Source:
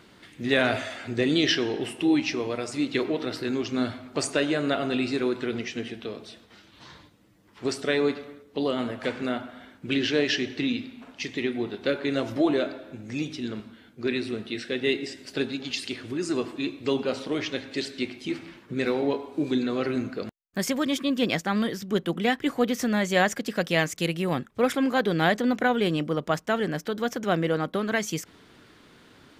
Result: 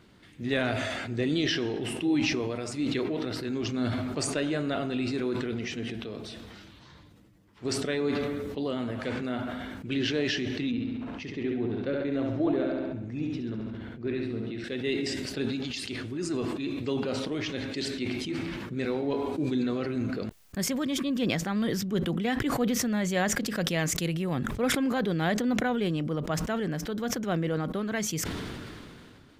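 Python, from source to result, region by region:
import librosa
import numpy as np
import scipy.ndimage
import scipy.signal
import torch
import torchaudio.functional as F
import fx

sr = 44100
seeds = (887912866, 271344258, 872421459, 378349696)

y = fx.chain(x, sr, fx.lowpass(hz=1400.0, slope=6),
    fx.echo_feedback(ms=69, feedback_pct=51, wet_db=-5.0), at=(10.71, 14.64))
y = fx.low_shelf(y, sr, hz=200.0, db=10.0)
y = fx.sustainer(y, sr, db_per_s=23.0)
y = y * 10.0 ** (-7.5 / 20.0)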